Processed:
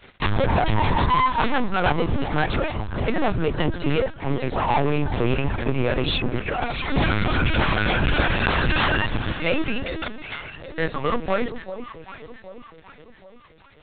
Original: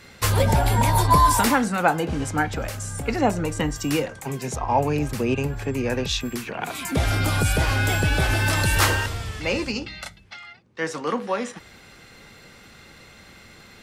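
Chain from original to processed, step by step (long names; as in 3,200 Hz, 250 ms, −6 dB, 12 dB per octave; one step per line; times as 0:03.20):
reverb reduction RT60 0.96 s
leveller curve on the samples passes 5
delay that swaps between a low-pass and a high-pass 387 ms, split 850 Hz, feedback 66%, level −9.5 dB
linear-prediction vocoder at 8 kHz pitch kept
level −10 dB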